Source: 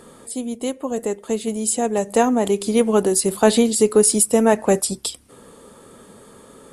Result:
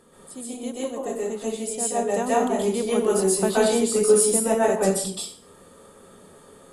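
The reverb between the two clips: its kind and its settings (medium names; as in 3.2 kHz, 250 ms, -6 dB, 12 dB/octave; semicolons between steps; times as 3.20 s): plate-style reverb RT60 0.57 s, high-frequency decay 0.75×, pre-delay 115 ms, DRR -7.5 dB; trim -11.5 dB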